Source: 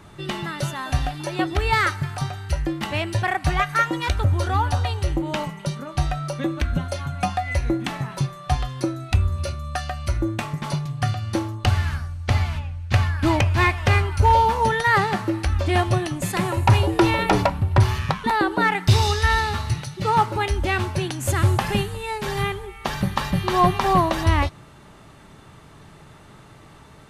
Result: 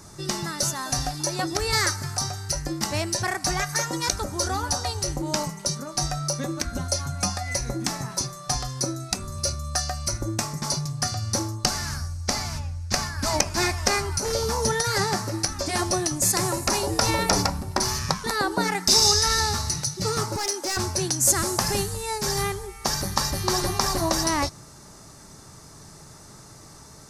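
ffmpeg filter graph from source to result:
ffmpeg -i in.wav -filter_complex "[0:a]asettb=1/sr,asplit=3[link_01][link_02][link_03];[link_01]atrim=end=20.364[link_04];[link_02]atrim=start=20.36:end=20.77,asetpts=PTS-STARTPTS,afade=type=in:duration=0.004:curve=qsin,afade=type=out:start_time=0.406:duration=0.004:curve=qsin,highpass=frequency=320:width=0.5412,highpass=frequency=320:width=1.3066,asoftclip=type=hard:threshold=-25dB[link_05];[link_03]atrim=start=20.766[link_06];[link_04][link_05]acrossfade=duration=0.004:curve1=hsin:curve2=qsin[link_07];[link_07][link_06]acrossfade=duration=0.004:curve1=qsin:curve2=hsin,afftfilt=real='re*lt(hypot(re,im),0.708)':imag='im*lt(hypot(re,im),0.708)':win_size=1024:overlap=0.75,highshelf=frequency=4100:width_type=q:width=3:gain=10,volume=-1dB" out.wav

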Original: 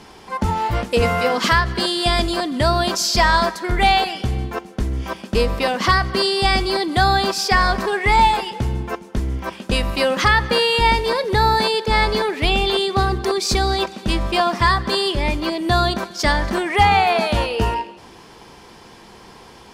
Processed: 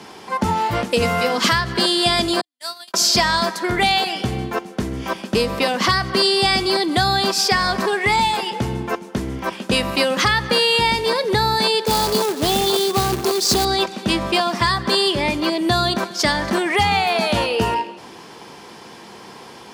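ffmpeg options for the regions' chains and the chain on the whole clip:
ffmpeg -i in.wav -filter_complex "[0:a]asettb=1/sr,asplit=3[link_01][link_02][link_03];[link_01]atrim=end=2.414[link_04];[link_02]atrim=start=2.41:end=2.94,asetpts=PTS-STARTPTS,afade=type=in:duration=0.004:curve=qsin,afade=type=out:start_time=0.526:duration=0.004:curve=qsin,highpass=frequency=170:width=0.5412,highpass=frequency=170:width=1.3066,agate=range=-50dB:threshold=-18dB:ratio=16:release=100:detection=peak,aderivative[link_05];[link_03]atrim=start=2.936[link_06];[link_04][link_05]acrossfade=duration=0.004:curve1=hsin:curve2=qsin[link_07];[link_07][link_06]acrossfade=duration=0.004:curve1=qsin:curve2=hsin,asettb=1/sr,asplit=3[link_08][link_09][link_10];[link_08]atrim=end=11.864[link_11];[link_09]atrim=start=11.86:end=13.65,asetpts=PTS-STARTPTS,afade=type=in:duration=0.004:curve=qsin,afade=type=out:start_time=1.786:duration=0.004:curve=qsin,asuperstop=centerf=2200:order=4:qfactor=1,acrusher=bits=2:mode=log:mix=0:aa=0.000001[link_12];[link_10]atrim=start=13.646[link_13];[link_11][link_12]acrossfade=duration=0.004:curve1=hsin:curve2=qsin[link_14];[link_14][link_13]acrossfade=duration=0.004:curve1=qsin:curve2=hsin,highpass=140,acrossover=split=200|3000[link_15][link_16][link_17];[link_16]acompressor=threshold=-21dB:ratio=6[link_18];[link_15][link_18][link_17]amix=inputs=3:normalize=0,volume=4dB" out.wav

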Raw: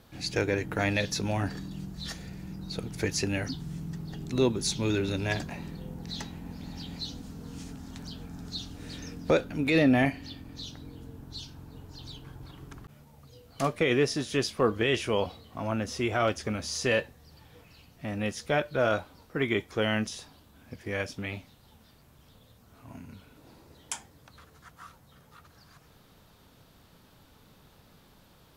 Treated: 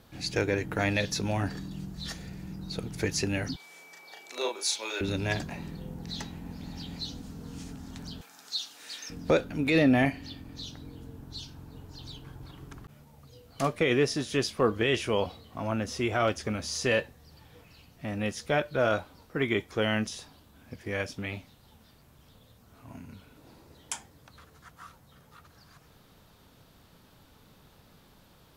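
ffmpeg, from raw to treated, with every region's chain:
ffmpeg -i in.wav -filter_complex "[0:a]asettb=1/sr,asplit=3[link_01][link_02][link_03];[link_01]atrim=end=3.564[link_04];[link_02]atrim=start=3.56:end=5.01,asetpts=PTS-STARTPTS,afade=type=in:duration=0.004:curve=qsin,afade=type=out:start_time=1.446:duration=0.004:curve=qsin,highpass=frequency=520:width=0.5412,highpass=frequency=520:width=1.3066,aeval=exprs='val(0)+0.00224*sin(2*PI*2300*n/s)':channel_layout=same,asplit=2[link_05][link_06];[link_06]adelay=36,volume=-3dB[link_07];[link_05][link_07]amix=inputs=2:normalize=0,atrim=end_sample=63945[link_08];[link_03]atrim=start=5.006[link_09];[link_04][link_08]acrossfade=duration=0.004:curve1=hsin:curve2=qsin[link_10];[link_10][link_09]acrossfade=duration=0.004:curve1=qsin:curve2=hsin,asettb=1/sr,asplit=3[link_11][link_12][link_13];[link_11]atrim=end=8.214[link_14];[link_12]atrim=start=8.21:end=9.1,asetpts=PTS-STARTPTS,afade=type=in:duration=0.004:curve=qsin,afade=type=out:start_time=0.886:duration=0.004:curve=qsin,highpass=820,highshelf=frequency=2200:gain=6.5[link_15];[link_13]atrim=start=9.096[link_16];[link_14][link_15]acrossfade=duration=0.004:curve1=hsin:curve2=qsin[link_17];[link_17][link_16]acrossfade=duration=0.004:curve1=qsin:curve2=hsin" out.wav

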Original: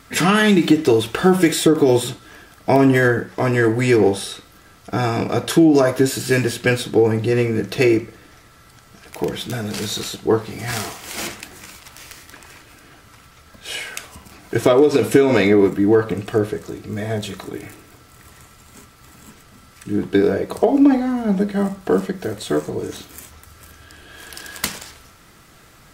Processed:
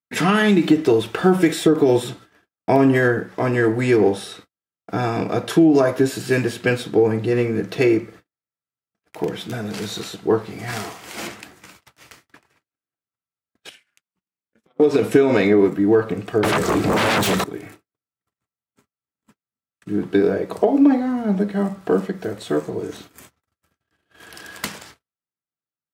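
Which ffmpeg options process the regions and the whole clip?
ffmpeg -i in.wav -filter_complex "[0:a]asettb=1/sr,asplit=3[link_01][link_02][link_03];[link_01]atrim=end=13.694[link_04];[link_02]atrim=start=13.69:end=14.8,asetpts=PTS-STARTPTS,afade=type=in:duration=0.004:curve=qsin,afade=type=out:start_time=1.106:duration=0.004:curve=qsin,equalizer=frequency=540:width=0.82:gain=-12,acompressor=threshold=-36dB:ratio=12:attack=3.2:release=140:knee=1:detection=peak,aeval=exprs='val(0)*sin(2*PI*110*n/s)':channel_layout=same[link_05];[link_03]atrim=start=14.796[link_06];[link_04][link_05]acrossfade=duration=0.004:curve1=hsin:curve2=qsin[link_07];[link_07][link_06]acrossfade=duration=0.004:curve1=qsin:curve2=hsin,asettb=1/sr,asplit=3[link_08][link_09][link_10];[link_08]atrim=end=16.434[link_11];[link_09]atrim=start=16.43:end=17.44,asetpts=PTS-STARTPTS,afade=type=in:duration=0.004:curve=qsin,afade=type=out:start_time=1.006:duration=0.004:curve=qsin,equalizer=frequency=7900:width=7.7:gain=5,aeval=exprs='0.237*sin(PI/2*7.08*val(0)/0.237)':channel_layout=same[link_12];[link_10]atrim=start=17.436[link_13];[link_11][link_12]acrossfade=duration=0.004:curve1=hsin:curve2=qsin[link_14];[link_14][link_13]acrossfade=duration=0.004:curve1=qsin:curve2=hsin,agate=range=-50dB:threshold=-39dB:ratio=16:detection=peak,highpass=110,highshelf=frequency=3700:gain=-7.5,volume=-1dB" out.wav

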